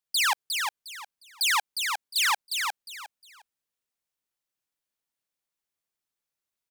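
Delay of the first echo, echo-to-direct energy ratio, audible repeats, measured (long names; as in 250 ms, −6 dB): 357 ms, −4.5 dB, 3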